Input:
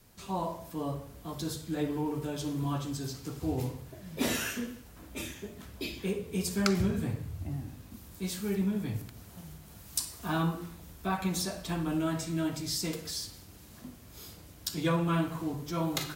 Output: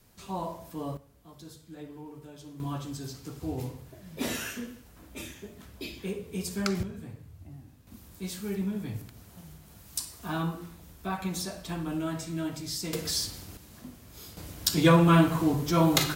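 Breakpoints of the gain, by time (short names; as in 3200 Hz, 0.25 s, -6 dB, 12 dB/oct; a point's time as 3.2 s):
-1 dB
from 0.97 s -12 dB
from 2.6 s -2 dB
from 6.83 s -10 dB
from 7.87 s -1.5 dB
from 12.93 s +7 dB
from 13.57 s +1 dB
from 14.37 s +9 dB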